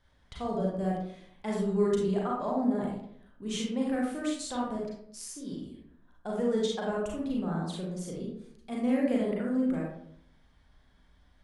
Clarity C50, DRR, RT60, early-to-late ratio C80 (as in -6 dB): 1.0 dB, -3.5 dB, 0.65 s, 5.5 dB